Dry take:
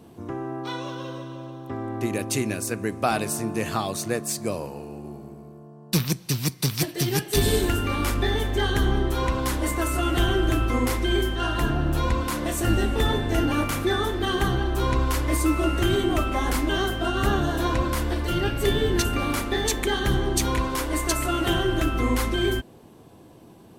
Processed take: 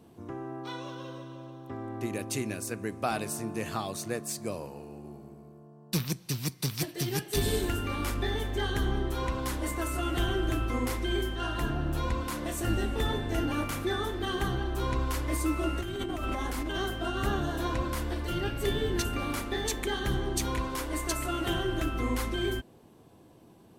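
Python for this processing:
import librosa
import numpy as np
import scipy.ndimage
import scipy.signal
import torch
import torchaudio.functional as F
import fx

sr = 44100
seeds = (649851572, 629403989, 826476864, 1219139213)

y = fx.over_compress(x, sr, threshold_db=-26.0, ratio=-1.0, at=(15.81, 16.77))
y = F.gain(torch.from_numpy(y), -7.0).numpy()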